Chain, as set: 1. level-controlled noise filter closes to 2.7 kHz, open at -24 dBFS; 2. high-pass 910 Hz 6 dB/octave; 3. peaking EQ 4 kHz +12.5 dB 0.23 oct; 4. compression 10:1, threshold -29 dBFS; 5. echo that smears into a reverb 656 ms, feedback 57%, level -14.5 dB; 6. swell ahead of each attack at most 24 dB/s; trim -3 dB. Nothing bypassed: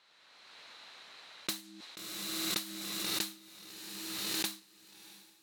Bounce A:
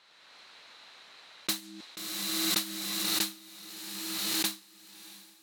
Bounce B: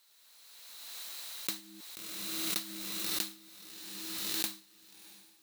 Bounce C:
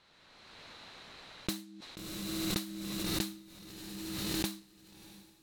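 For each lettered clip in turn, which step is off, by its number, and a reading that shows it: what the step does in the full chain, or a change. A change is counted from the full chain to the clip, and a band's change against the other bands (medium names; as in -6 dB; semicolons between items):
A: 4, mean gain reduction 3.5 dB; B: 1, 8 kHz band +2.5 dB; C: 2, 125 Hz band +13.5 dB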